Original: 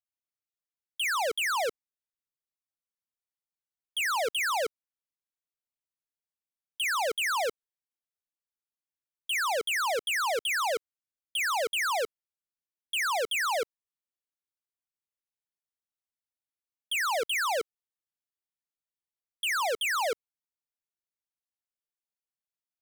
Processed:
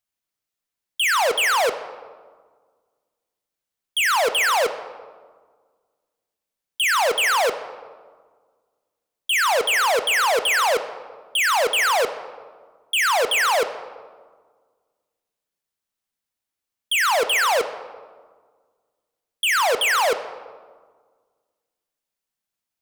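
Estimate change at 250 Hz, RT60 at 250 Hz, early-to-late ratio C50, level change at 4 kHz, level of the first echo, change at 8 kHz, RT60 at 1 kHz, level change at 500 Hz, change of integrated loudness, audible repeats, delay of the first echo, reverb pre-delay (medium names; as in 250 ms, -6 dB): +10.0 dB, 1.9 s, 12.0 dB, +9.5 dB, no echo, +9.0 dB, 1.5 s, +9.5 dB, +9.5 dB, no echo, no echo, 4 ms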